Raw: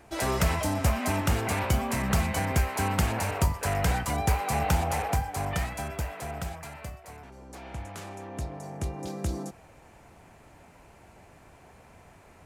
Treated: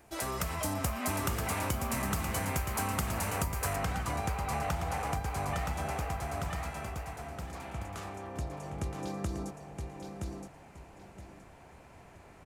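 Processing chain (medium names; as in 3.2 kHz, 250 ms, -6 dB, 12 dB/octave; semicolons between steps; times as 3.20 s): feedback delay 970 ms, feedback 24%, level -6 dB; compression 6:1, threshold -28 dBFS, peak gain reduction 9.5 dB; treble shelf 8.1 kHz +9.5 dB, from 3.76 s -4 dB; level rider gain up to 4 dB; dynamic bell 1.2 kHz, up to +6 dB, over -51 dBFS, Q 4.5; trim -6 dB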